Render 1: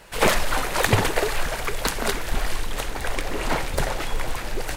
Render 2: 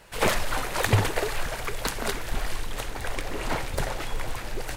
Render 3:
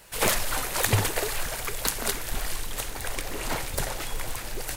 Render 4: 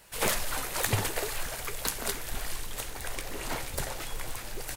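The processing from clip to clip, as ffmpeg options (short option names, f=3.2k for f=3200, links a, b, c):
-af "equalizer=f=100:w=4:g=7,volume=-4.5dB"
-af "crystalizer=i=2:c=0,volume=-2.5dB"
-filter_complex "[0:a]asplit=2[a][b];[b]adelay=15,volume=-12.5dB[c];[a][c]amix=inputs=2:normalize=0,volume=-4.5dB"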